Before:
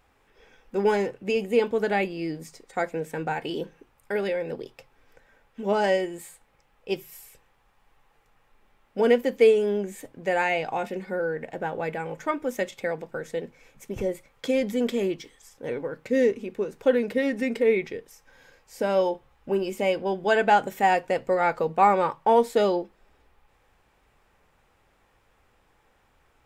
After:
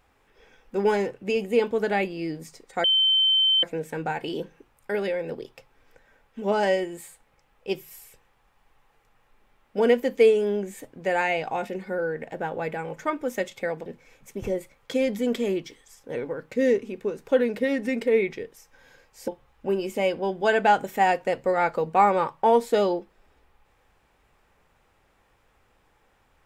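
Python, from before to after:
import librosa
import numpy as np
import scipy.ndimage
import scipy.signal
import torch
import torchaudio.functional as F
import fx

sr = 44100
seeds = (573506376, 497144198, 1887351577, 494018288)

y = fx.edit(x, sr, fx.insert_tone(at_s=2.84, length_s=0.79, hz=3090.0, db=-17.0),
    fx.cut(start_s=13.07, length_s=0.33),
    fx.cut(start_s=18.82, length_s=0.29), tone=tone)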